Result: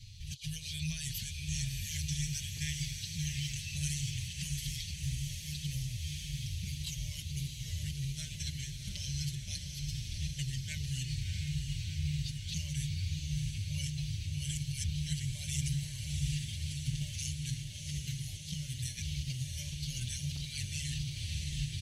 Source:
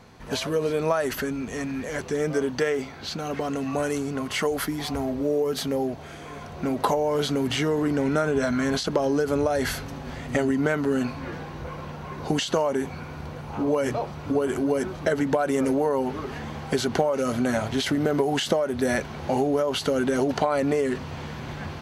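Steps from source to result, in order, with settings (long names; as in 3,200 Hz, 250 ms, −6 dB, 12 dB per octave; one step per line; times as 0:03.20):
inverse Chebyshev band-stop filter 270–1,400 Hz, stop band 50 dB
high-shelf EQ 11,000 Hz −12 dB
compressor whose output falls as the input rises −42 dBFS, ratio −0.5
on a send: feedback delay with all-pass diffusion 702 ms, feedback 71%, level −5 dB
on the sum: barber-pole flanger 5.9 ms −1.7 Hz
level +6.5 dB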